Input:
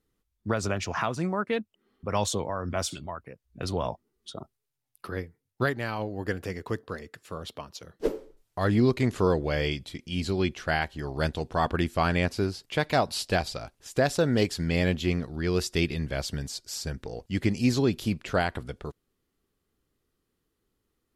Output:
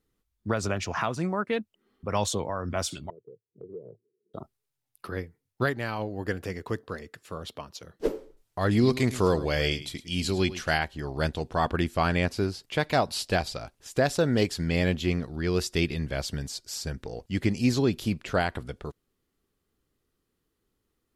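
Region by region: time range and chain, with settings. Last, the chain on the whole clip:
0:03.10–0:04.34: Chebyshev band-pass filter 110–460 Hz, order 4 + low shelf with overshoot 330 Hz −6.5 dB, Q 3 + downward compressor 2 to 1, threshold −44 dBFS
0:08.71–0:10.78: parametric band 11,000 Hz +8.5 dB 2.6 octaves + single-tap delay 106 ms −14.5 dB
whole clip: no processing

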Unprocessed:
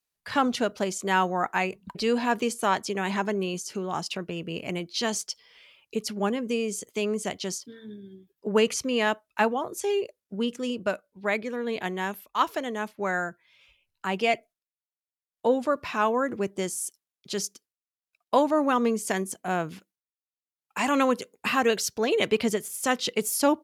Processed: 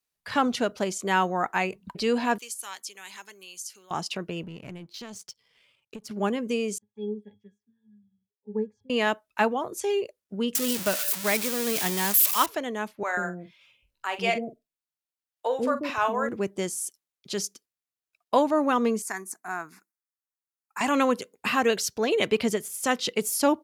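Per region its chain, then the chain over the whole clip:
0:02.38–0:03.91: first difference + notch filter 650 Hz, Q 8.6
0:04.43–0:06.11: parametric band 120 Hz +13.5 dB 1.7 octaves + downward compressor 5 to 1, threshold −35 dBFS + power curve on the samples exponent 1.4
0:06.78–0:08.90: phaser swept by the level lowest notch 300 Hz, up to 3,200 Hz, full sweep at −21 dBFS + resonances in every octave G#, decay 0.14 s + expander for the loud parts, over −44 dBFS
0:10.55–0:12.46: spike at every zero crossing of −15.5 dBFS + parametric band 150 Hz +5.5 dB 0.84 octaves
0:13.03–0:16.29: double-tracking delay 44 ms −11 dB + multiband delay without the direct sound highs, lows 140 ms, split 450 Hz
0:19.02–0:20.81: high-pass filter 410 Hz + phaser with its sweep stopped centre 1,300 Hz, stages 4
whole clip: no processing

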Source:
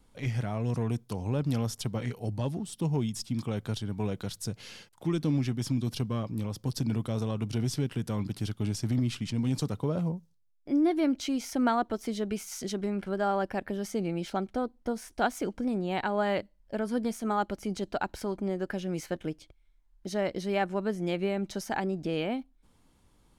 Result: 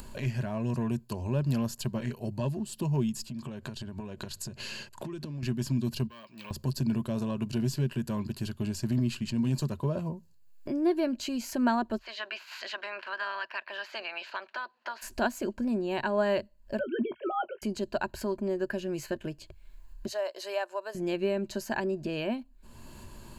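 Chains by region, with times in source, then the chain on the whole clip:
0:03.29–0:05.43: Bessel low-pass filter 10,000 Hz + downward compressor 10 to 1, threshold −39 dBFS
0:06.07–0:06.51: resonant band-pass 2,800 Hz, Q 1.3 + bad sample-rate conversion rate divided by 2×, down filtered, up hold + saturating transformer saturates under 880 Hz
0:11.97–0:15.01: ceiling on every frequency bin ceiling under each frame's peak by 21 dB + high-pass filter 1,200 Hz + high-frequency loss of the air 270 metres
0:16.79–0:17.62: three sine waves on the formant tracks + double-tracking delay 20 ms −13 dB
0:20.07–0:20.95: high-pass filter 590 Hz 24 dB per octave + dynamic equaliser 2,100 Hz, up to −6 dB, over −46 dBFS, Q 1.1
whole clip: de-essing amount 70%; EQ curve with evenly spaced ripples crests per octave 1.4, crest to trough 10 dB; upward compression, threshold −29 dBFS; level −1.5 dB

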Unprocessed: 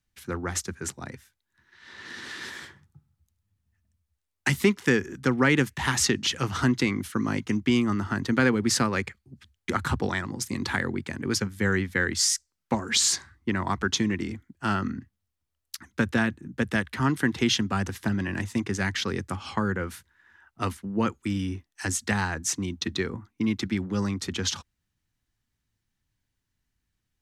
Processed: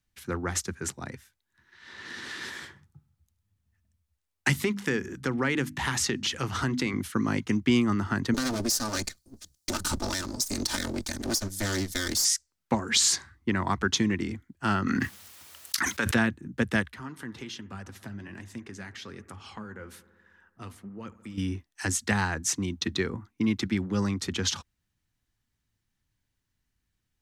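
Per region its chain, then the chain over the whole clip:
0:04.53–0:06.94: mains-hum notches 50/100/150/200/250/300 Hz + downward compressor 2 to 1, threshold −26 dBFS
0:08.34–0:12.25: lower of the sound and its delayed copy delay 3.3 ms + high shelf with overshoot 3,700 Hz +13 dB, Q 1.5 + downward compressor 5 to 1, threshold −24 dBFS
0:14.87–0:16.15: high-pass filter 910 Hz 6 dB per octave + envelope flattener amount 100%
0:16.91–0:21.38: downward compressor 2 to 1, threshold −41 dBFS + flanger 1.2 Hz, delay 0.1 ms, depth 9.7 ms, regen +55% + bucket-brigade delay 70 ms, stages 1,024, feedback 77%, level −19 dB
whole clip: no processing

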